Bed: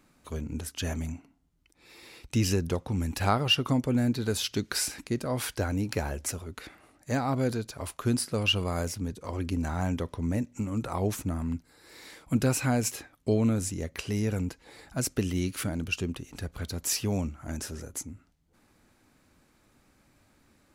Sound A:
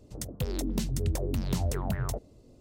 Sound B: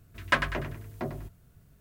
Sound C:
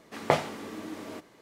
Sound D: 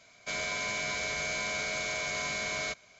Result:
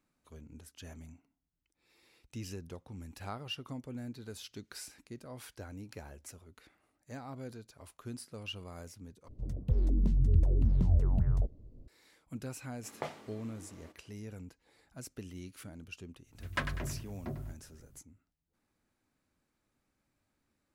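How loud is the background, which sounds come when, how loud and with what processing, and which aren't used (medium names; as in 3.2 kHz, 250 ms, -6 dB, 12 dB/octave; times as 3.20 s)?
bed -16.5 dB
9.28 s: replace with A -13 dB + tilt EQ -4.5 dB/octave
12.72 s: add C -15.5 dB
16.25 s: add B -10.5 dB, fades 0.10 s + tone controls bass +9 dB, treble +4 dB
not used: D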